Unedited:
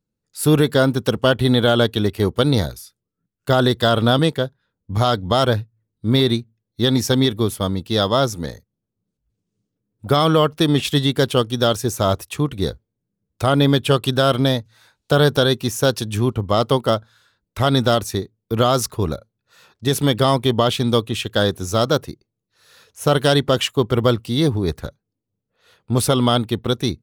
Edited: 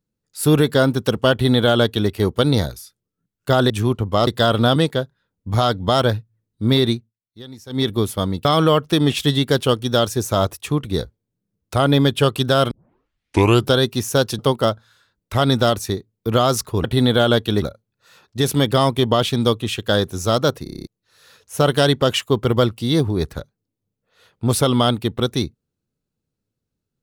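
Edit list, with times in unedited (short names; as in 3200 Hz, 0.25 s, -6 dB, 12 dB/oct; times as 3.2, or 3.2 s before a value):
1.32–2.1 copy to 19.09
6.38–7.3 dip -20.5 dB, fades 0.18 s
7.88–10.13 cut
14.39 tape start 1.03 s
16.07–16.64 move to 3.7
22.1 stutter in place 0.03 s, 8 plays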